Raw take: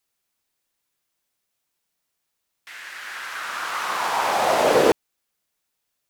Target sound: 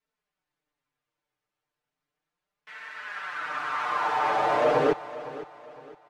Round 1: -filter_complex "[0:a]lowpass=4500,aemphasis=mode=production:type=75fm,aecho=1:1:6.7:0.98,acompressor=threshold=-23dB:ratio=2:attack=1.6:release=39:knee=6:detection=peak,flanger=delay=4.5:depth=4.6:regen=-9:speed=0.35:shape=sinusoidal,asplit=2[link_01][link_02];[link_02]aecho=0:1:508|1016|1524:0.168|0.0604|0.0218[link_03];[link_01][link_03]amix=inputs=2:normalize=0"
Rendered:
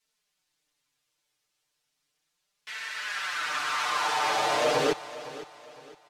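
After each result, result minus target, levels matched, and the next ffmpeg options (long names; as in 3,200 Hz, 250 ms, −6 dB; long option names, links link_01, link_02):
4,000 Hz band +11.0 dB; downward compressor: peak gain reduction +3.5 dB
-filter_complex "[0:a]lowpass=1600,aemphasis=mode=production:type=75fm,aecho=1:1:6.7:0.98,acompressor=threshold=-23dB:ratio=2:attack=1.6:release=39:knee=6:detection=peak,flanger=delay=4.5:depth=4.6:regen=-9:speed=0.35:shape=sinusoidal,asplit=2[link_01][link_02];[link_02]aecho=0:1:508|1016|1524:0.168|0.0604|0.0218[link_03];[link_01][link_03]amix=inputs=2:normalize=0"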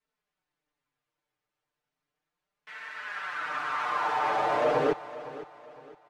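downward compressor: peak gain reduction +3 dB
-filter_complex "[0:a]lowpass=1600,aemphasis=mode=production:type=75fm,aecho=1:1:6.7:0.98,acompressor=threshold=-17dB:ratio=2:attack=1.6:release=39:knee=6:detection=peak,flanger=delay=4.5:depth=4.6:regen=-9:speed=0.35:shape=sinusoidal,asplit=2[link_01][link_02];[link_02]aecho=0:1:508|1016|1524:0.168|0.0604|0.0218[link_03];[link_01][link_03]amix=inputs=2:normalize=0"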